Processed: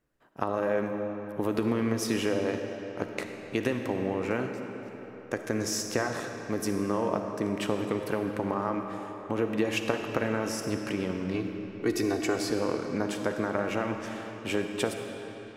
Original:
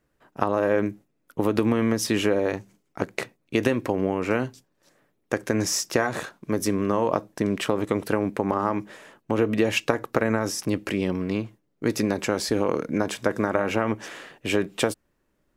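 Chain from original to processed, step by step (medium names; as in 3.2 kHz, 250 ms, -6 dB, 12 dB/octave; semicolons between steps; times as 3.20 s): 11.34–12.36 s: comb 2.7 ms, depth 93%; on a send: reverberation RT60 3.9 s, pre-delay 15 ms, DRR 4.5 dB; on the sum: trim -6.5 dB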